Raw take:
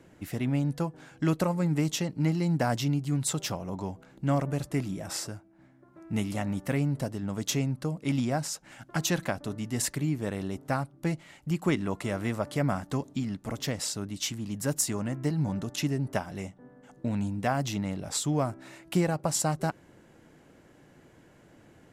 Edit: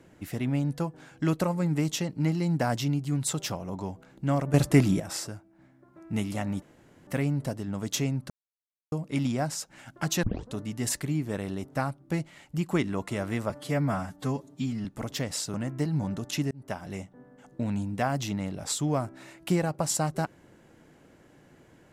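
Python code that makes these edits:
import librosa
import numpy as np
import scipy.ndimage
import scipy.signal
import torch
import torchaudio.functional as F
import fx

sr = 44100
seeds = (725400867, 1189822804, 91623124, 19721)

y = fx.edit(x, sr, fx.clip_gain(start_s=4.54, length_s=0.46, db=10.0),
    fx.insert_room_tone(at_s=6.62, length_s=0.45),
    fx.insert_silence(at_s=7.85, length_s=0.62),
    fx.tape_start(start_s=9.16, length_s=0.3),
    fx.stretch_span(start_s=12.43, length_s=0.9, factor=1.5),
    fx.cut(start_s=14.02, length_s=0.97),
    fx.fade_in_span(start_s=15.96, length_s=0.36), tone=tone)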